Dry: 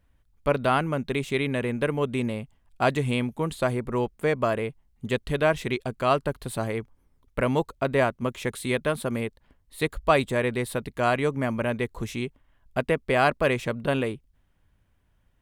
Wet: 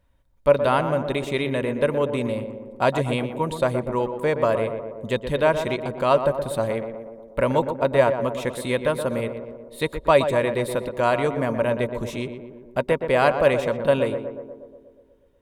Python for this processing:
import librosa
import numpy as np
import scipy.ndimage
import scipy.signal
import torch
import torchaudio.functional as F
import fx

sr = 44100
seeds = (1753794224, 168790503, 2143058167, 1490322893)

y = fx.small_body(x, sr, hz=(560.0, 940.0, 3700.0), ring_ms=45, db=10)
y = fx.echo_tape(y, sr, ms=121, feedback_pct=73, wet_db=-6.5, lp_hz=1300.0, drive_db=7.0, wow_cents=9)